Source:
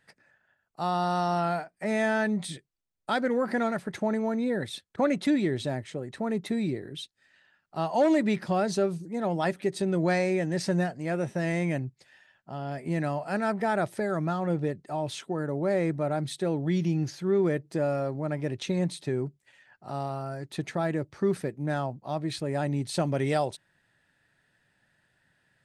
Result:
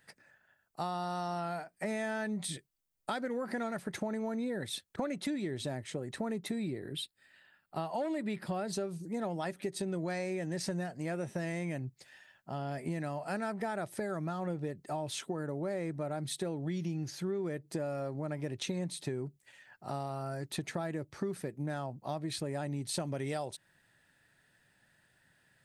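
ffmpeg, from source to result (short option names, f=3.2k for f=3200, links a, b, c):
-filter_complex "[0:a]asettb=1/sr,asplit=3[a][b][c];[a]atrim=end=6.584[d];[b]atrim=start=6.58:end=8.73,asetpts=PTS-STARTPTS,afade=t=in:d=0.004:c=qsin,afade=t=out:st=2.146:d=0.004:c=qsin,equalizer=f=6.1k:t=o:w=0.27:g=-15[e];[c]atrim=start=8.726[f];[d][e]acrossfade=d=0.004:c1=hsin:c2=qsin[g];[g][f]acrossfade=d=0.004:c1=qsin:c2=hsin,highshelf=f=8.7k:g=10.5,acompressor=threshold=-33dB:ratio=6"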